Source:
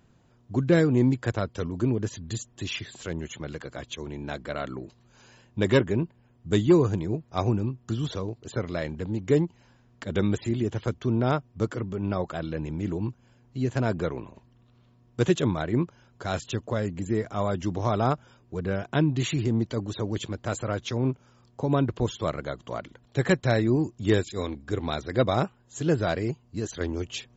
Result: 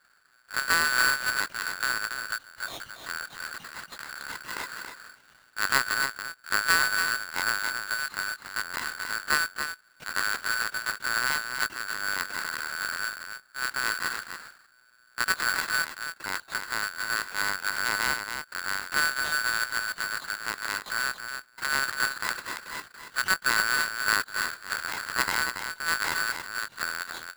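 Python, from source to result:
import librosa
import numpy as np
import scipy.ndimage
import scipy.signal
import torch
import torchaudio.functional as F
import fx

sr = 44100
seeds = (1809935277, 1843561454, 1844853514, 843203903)

p1 = fx.halfwave_hold(x, sr)
p2 = fx.lpc_vocoder(p1, sr, seeds[0], excitation='pitch_kept', order=10)
p3 = fx.formant_shift(p2, sr, semitones=-4)
p4 = p3 + fx.echo_single(p3, sr, ms=280, db=-7.0, dry=0)
p5 = p4 * np.sign(np.sin(2.0 * np.pi * 1500.0 * np.arange(len(p4)) / sr))
y = F.gain(torch.from_numpy(p5), -8.0).numpy()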